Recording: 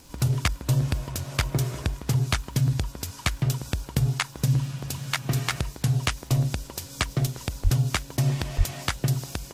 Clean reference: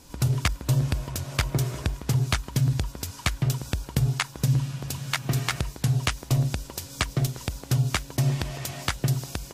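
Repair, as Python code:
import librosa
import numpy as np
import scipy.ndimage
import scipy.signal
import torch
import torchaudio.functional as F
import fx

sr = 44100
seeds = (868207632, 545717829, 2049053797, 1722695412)

y = fx.fix_declick_ar(x, sr, threshold=6.5)
y = fx.fix_deplosive(y, sr, at_s=(7.63, 8.57))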